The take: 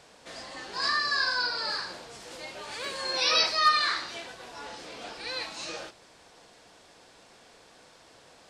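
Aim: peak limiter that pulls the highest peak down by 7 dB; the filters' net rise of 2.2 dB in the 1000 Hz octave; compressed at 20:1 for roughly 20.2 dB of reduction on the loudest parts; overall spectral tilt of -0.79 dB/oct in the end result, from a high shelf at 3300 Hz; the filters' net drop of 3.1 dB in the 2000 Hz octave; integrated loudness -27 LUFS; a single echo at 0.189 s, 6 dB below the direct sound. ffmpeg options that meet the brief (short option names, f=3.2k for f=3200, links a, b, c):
-af "equalizer=f=1k:t=o:g=5,equalizer=f=2k:t=o:g=-7.5,highshelf=f=3.3k:g=5.5,acompressor=threshold=-36dB:ratio=20,alimiter=level_in=8.5dB:limit=-24dB:level=0:latency=1,volume=-8.5dB,aecho=1:1:189:0.501,volume=13dB"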